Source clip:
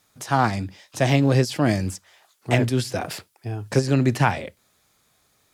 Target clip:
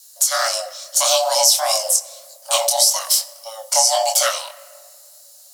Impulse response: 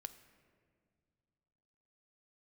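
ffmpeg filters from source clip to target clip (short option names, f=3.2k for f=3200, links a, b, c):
-filter_complex "[0:a]bandreject=f=3.2k:w=19,afreqshift=450,aexciter=amount=10.5:drive=6.4:freq=3.6k,flanger=delay=18.5:depth=7.8:speed=1.7,asettb=1/sr,asplit=3[a][b][c];[a]atrim=end=3.824[d];[b]atrim=start=3.82:end=4.29,asetpts=PTS-STARTPTS,afade=t=in:d=0.004:c=qsin,afade=t=out:st=0.466:d=0.004:c=qsin,asplit=2[e][f];[f]adelay=18,volume=-5dB[g];[e][g]amix=inputs=2:normalize=0,atrim=end_sample=20727[h];[c]atrim=start=4.286[i];[d][h]acrossfade=d=0.004:c1=hsin:c2=qsin[j];[j][i]acrossfade=d=0.004:c1=qsin:c2=hsin,asplit=2[k][l];[1:a]atrim=start_sample=2205[m];[l][m]afir=irnorm=-1:irlink=0,volume=11.5dB[n];[k][n]amix=inputs=2:normalize=0,volume=-9.5dB"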